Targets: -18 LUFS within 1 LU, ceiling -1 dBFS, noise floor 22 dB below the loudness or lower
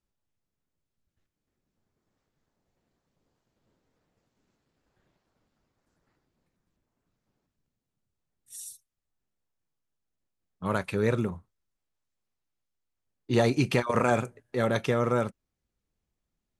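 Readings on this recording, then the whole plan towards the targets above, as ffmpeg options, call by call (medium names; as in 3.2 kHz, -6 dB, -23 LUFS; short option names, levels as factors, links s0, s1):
loudness -27.5 LUFS; peak level -9.5 dBFS; loudness target -18.0 LUFS
-> -af "volume=2.99,alimiter=limit=0.891:level=0:latency=1"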